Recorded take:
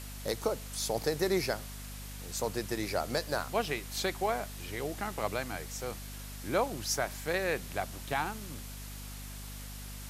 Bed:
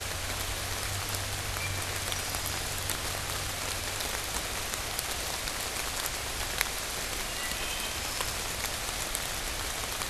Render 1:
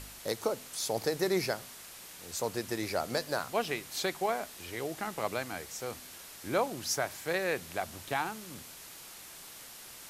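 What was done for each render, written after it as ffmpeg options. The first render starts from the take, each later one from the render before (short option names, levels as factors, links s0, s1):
-af "bandreject=f=50:t=h:w=4,bandreject=f=100:t=h:w=4,bandreject=f=150:t=h:w=4,bandreject=f=200:t=h:w=4,bandreject=f=250:t=h:w=4"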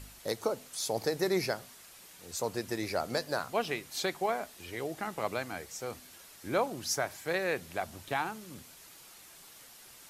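-af "afftdn=nr=6:nf=-49"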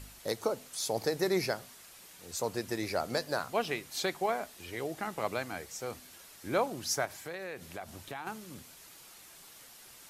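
-filter_complex "[0:a]asettb=1/sr,asplit=3[s0][s1][s2];[s0]atrim=end=7.054[s3];[s1]atrim=start=7.05:end=8.27,asetpts=PTS-STARTPTS,afade=t=in:d=0.004:c=qsin,afade=t=out:st=1.216:d=0.004:c=qsin,acompressor=threshold=0.0112:ratio=3:attack=3.2:release=140:knee=1:detection=peak[s4];[s2]atrim=start=8.266[s5];[s3][s4]acrossfade=d=0.004:c1=hsin:c2=qsin[s6];[s6][s5]acrossfade=d=0.004:c1=qsin:c2=hsin"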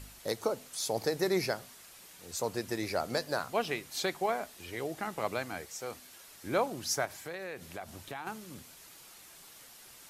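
-filter_complex "[0:a]asettb=1/sr,asplit=3[s0][s1][s2];[s0]atrim=end=5.654[s3];[s1]atrim=start=5.65:end=6.28,asetpts=PTS-STARTPTS,afade=t=in:d=0.004:c=qsin,afade=t=out:st=0.626:d=0.004:c=qsin,lowshelf=f=250:g=-6.5[s4];[s2]atrim=start=6.276[s5];[s3][s4]acrossfade=d=0.004:c1=hsin:c2=qsin[s6];[s6][s5]acrossfade=d=0.004:c1=qsin:c2=hsin"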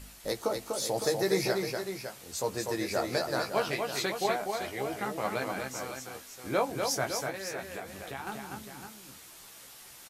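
-filter_complex "[0:a]asplit=2[s0][s1];[s1]adelay=15,volume=0.562[s2];[s0][s2]amix=inputs=2:normalize=0,aecho=1:1:245|559:0.596|0.355"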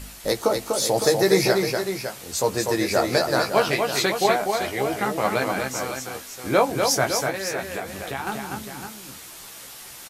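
-af "volume=2.99"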